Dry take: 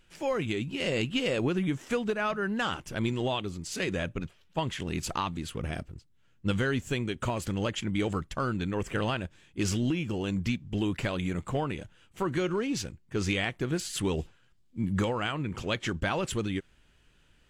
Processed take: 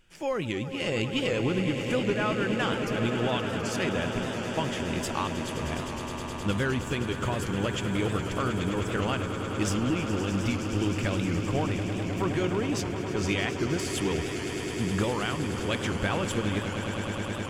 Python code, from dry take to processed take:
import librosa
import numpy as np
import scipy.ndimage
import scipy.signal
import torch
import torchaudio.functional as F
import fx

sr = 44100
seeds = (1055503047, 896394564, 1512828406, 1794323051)

y = fx.notch(x, sr, hz=4000.0, q=12.0)
y = fx.echo_swell(y, sr, ms=104, loudest=8, wet_db=-12.5)
y = fx.record_warp(y, sr, rpm=78.0, depth_cents=100.0)